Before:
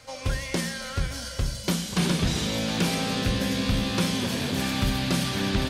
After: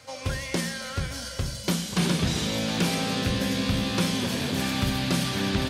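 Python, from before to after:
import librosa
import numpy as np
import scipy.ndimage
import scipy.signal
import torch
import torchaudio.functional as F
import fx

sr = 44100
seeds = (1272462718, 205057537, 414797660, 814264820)

y = scipy.signal.sosfilt(scipy.signal.butter(2, 63.0, 'highpass', fs=sr, output='sos'), x)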